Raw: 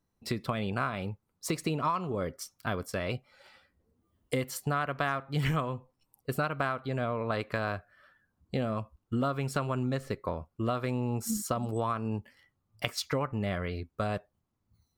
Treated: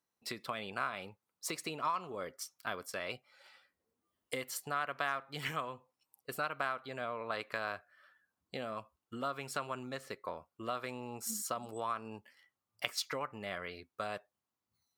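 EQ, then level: HPF 900 Hz 6 dB/oct; -2.0 dB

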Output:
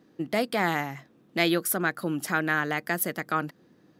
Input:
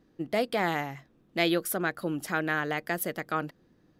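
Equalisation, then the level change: HPF 140 Hz 12 dB/oct; dynamic EQ 3100 Hz, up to -4 dB, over -47 dBFS, Q 1.2; dynamic EQ 520 Hz, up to -6 dB, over -42 dBFS, Q 0.97; +5.5 dB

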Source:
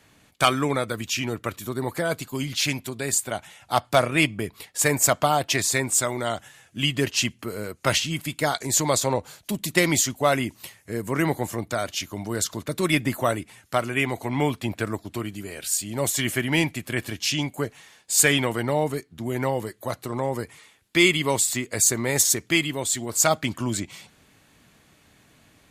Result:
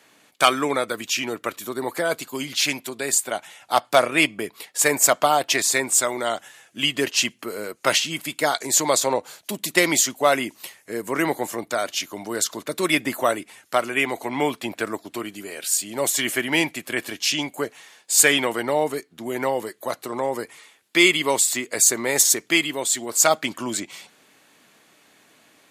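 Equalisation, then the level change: HPF 300 Hz 12 dB/oct; +3.0 dB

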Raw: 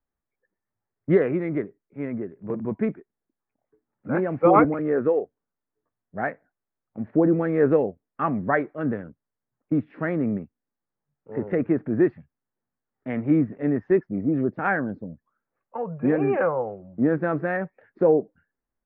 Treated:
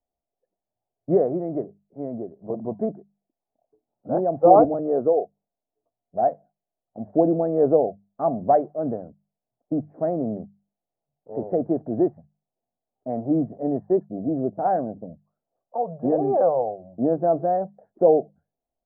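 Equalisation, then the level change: ladder low-pass 740 Hz, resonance 75%; notches 50/100/150/200 Hz; +8.5 dB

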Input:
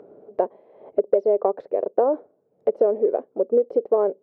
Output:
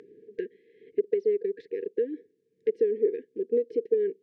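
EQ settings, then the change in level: brick-wall FIR band-stop 490–1600 Hz; air absorption 59 m; tilt shelf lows -7 dB, about 740 Hz; 0.0 dB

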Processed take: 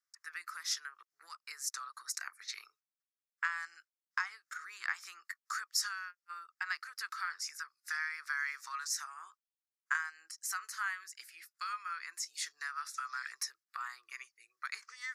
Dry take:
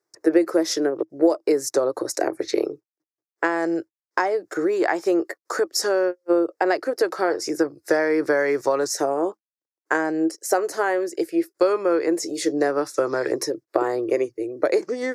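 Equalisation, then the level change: elliptic high-pass 1200 Hz, stop band 50 dB; -7.5 dB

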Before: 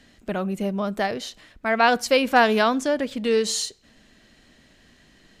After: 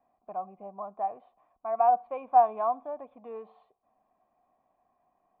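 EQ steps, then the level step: vocal tract filter a; low shelf 97 Hz -7 dB; +2.5 dB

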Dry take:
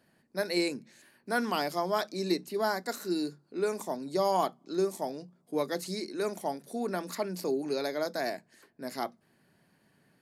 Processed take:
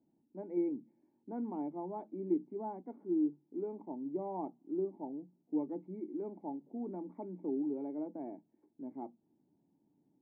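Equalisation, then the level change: vocal tract filter u; air absorption 260 m; high shelf 2000 Hz +9.5 dB; +2.5 dB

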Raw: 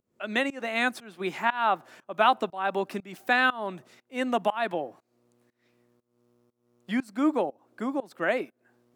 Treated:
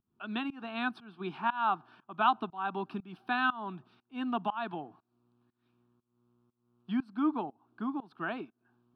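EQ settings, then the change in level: tape spacing loss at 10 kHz 23 dB; fixed phaser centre 2000 Hz, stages 6; 0.0 dB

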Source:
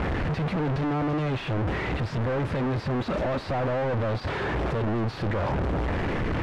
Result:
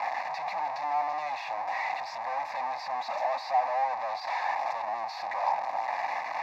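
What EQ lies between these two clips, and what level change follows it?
resonant high-pass 780 Hz, resonance Q 4.2; tilt +2 dB/oct; fixed phaser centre 2100 Hz, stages 8; -3.0 dB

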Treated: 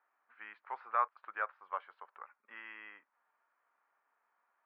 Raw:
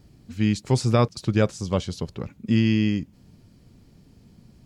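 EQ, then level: HPF 1100 Hz 24 dB/oct; LPF 1500 Hz 24 dB/oct; air absorption 260 m; +2.5 dB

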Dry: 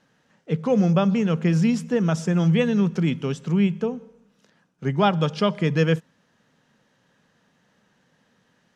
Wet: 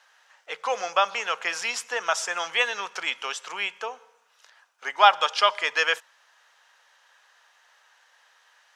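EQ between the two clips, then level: HPF 790 Hz 24 dB/oct; +8.0 dB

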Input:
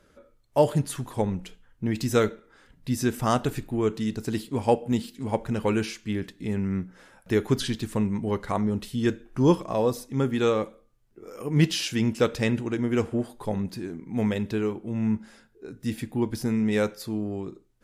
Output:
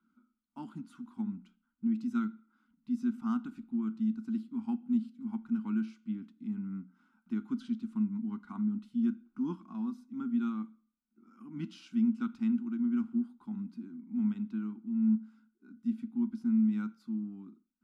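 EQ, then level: double band-pass 580 Hz, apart 2.7 oct; fixed phaser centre 460 Hz, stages 6; +1.0 dB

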